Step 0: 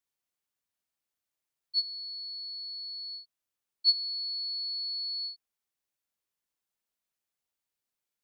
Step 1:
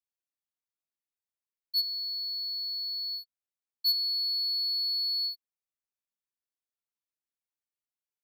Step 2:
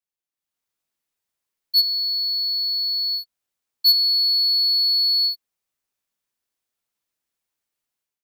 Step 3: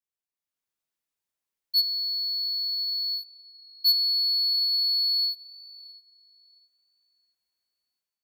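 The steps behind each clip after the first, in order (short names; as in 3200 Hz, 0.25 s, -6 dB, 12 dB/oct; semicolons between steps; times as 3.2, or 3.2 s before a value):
sample leveller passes 3; gain -6 dB
AGC gain up to 11 dB
tape echo 0.669 s, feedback 31%, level -19 dB, low-pass 4900 Hz; gain -5.5 dB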